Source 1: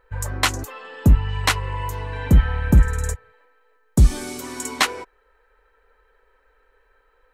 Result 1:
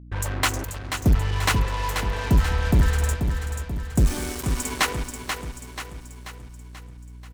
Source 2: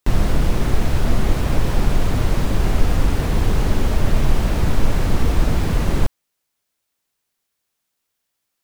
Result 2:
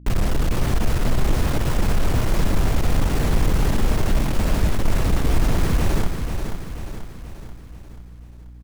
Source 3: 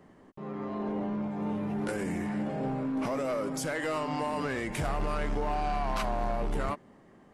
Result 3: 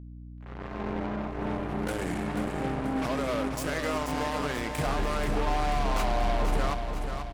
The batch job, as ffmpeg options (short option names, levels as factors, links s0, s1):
-filter_complex "[0:a]equalizer=f=4000:w=1.5:g=-2.5,asoftclip=type=tanh:threshold=0.237,acrusher=bits=4:mix=0:aa=0.5,aeval=exprs='val(0)+0.00794*(sin(2*PI*60*n/s)+sin(2*PI*2*60*n/s)/2+sin(2*PI*3*60*n/s)/3+sin(2*PI*4*60*n/s)/4+sin(2*PI*5*60*n/s)/5)':c=same,asplit=2[s0][s1];[s1]aecho=0:1:485|970|1455|1940|2425|2910:0.447|0.232|0.121|0.0628|0.0327|0.017[s2];[s0][s2]amix=inputs=2:normalize=0"